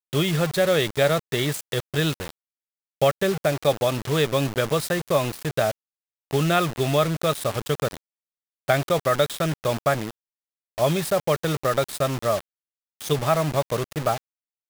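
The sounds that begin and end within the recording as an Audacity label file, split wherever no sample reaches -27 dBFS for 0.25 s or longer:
3.020000	5.710000	sound
6.310000	7.970000	sound
8.680000	10.110000	sound
10.780000	12.410000	sound
13.010000	14.180000	sound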